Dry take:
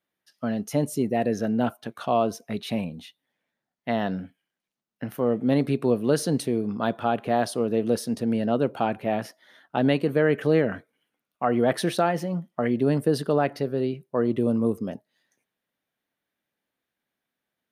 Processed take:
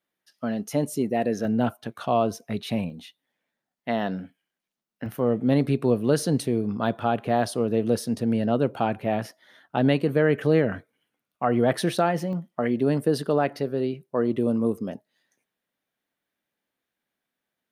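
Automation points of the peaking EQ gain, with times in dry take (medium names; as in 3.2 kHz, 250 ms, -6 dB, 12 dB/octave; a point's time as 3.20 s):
peaking EQ 100 Hz 1.1 oct
-4 dB
from 1.45 s +4.5 dB
from 2.90 s -4.5 dB
from 5.06 s +5 dB
from 12.33 s -2.5 dB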